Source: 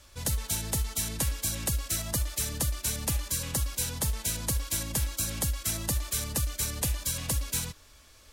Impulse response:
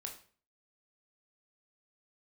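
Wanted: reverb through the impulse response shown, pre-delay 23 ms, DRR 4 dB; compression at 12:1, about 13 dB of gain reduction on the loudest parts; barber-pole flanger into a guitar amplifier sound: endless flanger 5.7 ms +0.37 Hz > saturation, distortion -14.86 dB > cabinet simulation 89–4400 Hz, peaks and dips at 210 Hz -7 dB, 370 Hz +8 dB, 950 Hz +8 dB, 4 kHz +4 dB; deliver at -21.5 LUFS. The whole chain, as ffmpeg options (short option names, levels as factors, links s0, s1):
-filter_complex "[0:a]acompressor=threshold=0.0126:ratio=12,asplit=2[s0][s1];[1:a]atrim=start_sample=2205,adelay=23[s2];[s1][s2]afir=irnorm=-1:irlink=0,volume=0.891[s3];[s0][s3]amix=inputs=2:normalize=0,asplit=2[s4][s5];[s5]adelay=5.7,afreqshift=0.37[s6];[s4][s6]amix=inputs=2:normalize=1,asoftclip=threshold=0.0119,highpass=89,equalizer=f=210:t=q:w=4:g=-7,equalizer=f=370:t=q:w=4:g=8,equalizer=f=950:t=q:w=4:g=8,equalizer=f=4000:t=q:w=4:g=4,lowpass=f=4400:w=0.5412,lowpass=f=4400:w=1.3066,volume=28.2"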